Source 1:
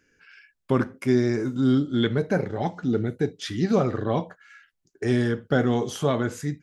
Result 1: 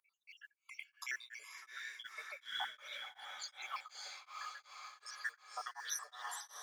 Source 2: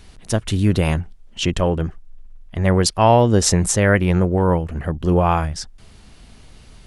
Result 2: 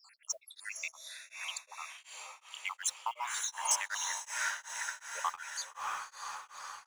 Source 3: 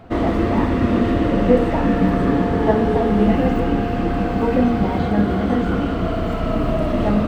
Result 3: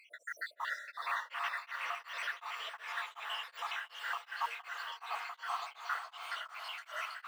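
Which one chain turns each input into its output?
time-frequency cells dropped at random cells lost 83%
Butterworth high-pass 1,000 Hz 36 dB per octave
in parallel at −1 dB: downward compressor, threshold −42 dBFS
on the sum: noise that follows the level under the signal 29 dB
soft clipping −18.5 dBFS
on a send: feedback delay with all-pass diffusion 565 ms, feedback 58%, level −3.5 dB
on the sum: tremolo along a rectified sine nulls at 2.7 Hz
level −2 dB

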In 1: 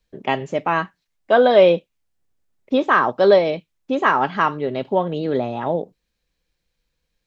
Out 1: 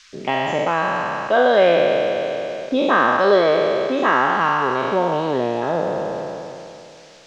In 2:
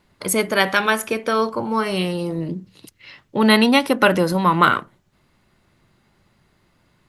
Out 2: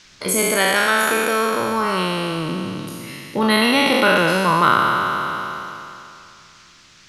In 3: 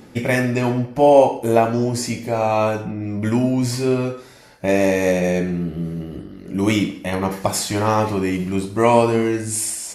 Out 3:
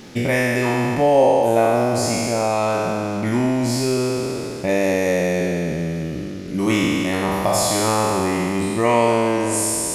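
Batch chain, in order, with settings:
peak hold with a decay on every bin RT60 2.56 s
mains-hum notches 50/100 Hz
in parallel at +2.5 dB: downward compressor, threshold −21 dBFS
on the sum: noise in a band 1,200–6,400 Hz −43 dBFS
level −7 dB

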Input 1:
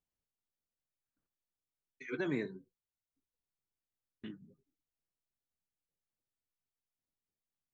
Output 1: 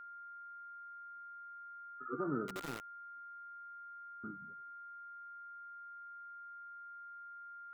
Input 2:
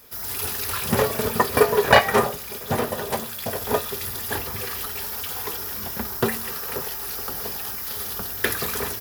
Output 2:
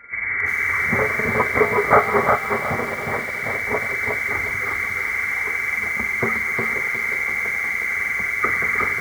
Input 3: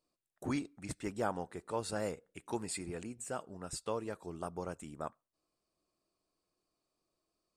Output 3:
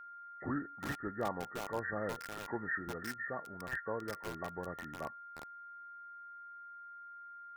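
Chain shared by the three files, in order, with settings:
hearing-aid frequency compression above 1,100 Hz 4 to 1
steady tone 1,400 Hz −46 dBFS
feedback echo at a low word length 360 ms, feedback 35%, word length 6 bits, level −3 dB
level −2 dB

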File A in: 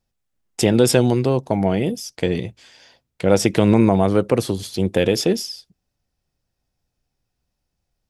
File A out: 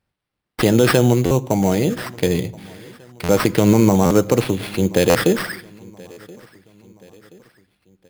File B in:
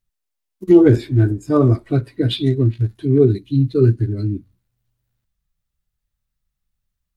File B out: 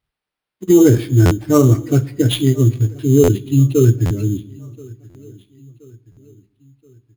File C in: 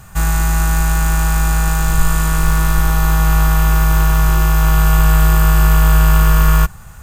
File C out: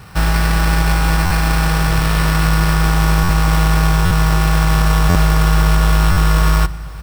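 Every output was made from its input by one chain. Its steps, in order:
high-pass filter 45 Hz 12 dB per octave
notch filter 680 Hz, Q 13
brickwall limiter −5.5 dBFS
sample-rate reduction 6,800 Hz, jitter 0%
repeating echo 1,027 ms, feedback 48%, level −24 dB
rectangular room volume 2,900 cubic metres, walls furnished, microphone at 0.45 metres
buffer that repeats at 0:01.25/0:03.23/0:04.05/0:05.09/0:06.11, samples 512, times 4
level +2.5 dB

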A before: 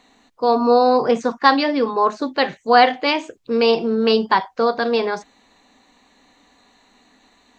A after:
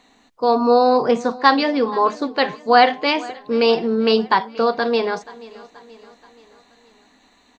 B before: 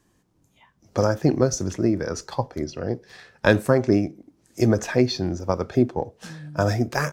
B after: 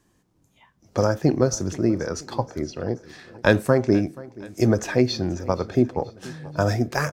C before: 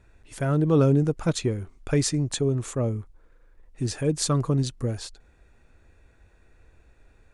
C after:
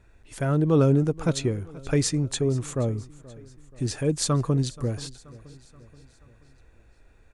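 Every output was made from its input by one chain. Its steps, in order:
repeating echo 479 ms, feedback 53%, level −20.5 dB

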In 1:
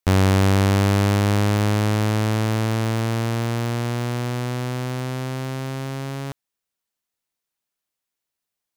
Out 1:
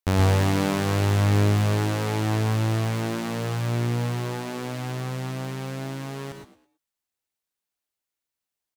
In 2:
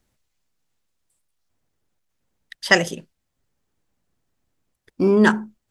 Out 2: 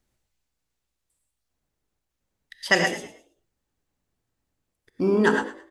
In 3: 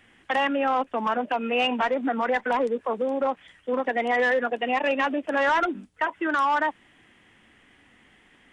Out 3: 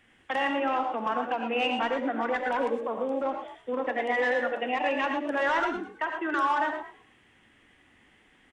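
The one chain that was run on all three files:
echo with shifted repeats 108 ms, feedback 31%, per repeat +57 Hz, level −14 dB
reverb whose tail is shaped and stops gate 140 ms rising, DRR 4 dB
level −5 dB

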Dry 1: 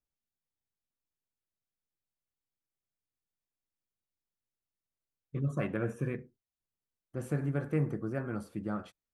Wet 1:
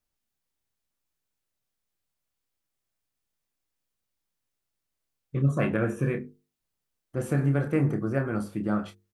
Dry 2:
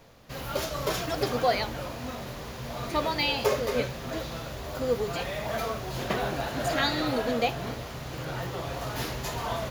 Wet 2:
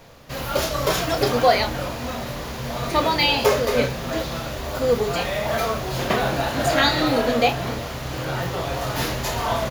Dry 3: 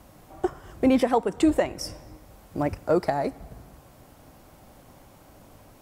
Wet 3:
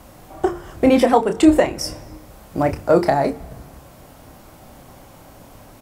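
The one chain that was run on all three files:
mains-hum notches 50/100/150/200/250/300/350/400/450 Hz
double-tracking delay 29 ms −8 dB
level +7.5 dB

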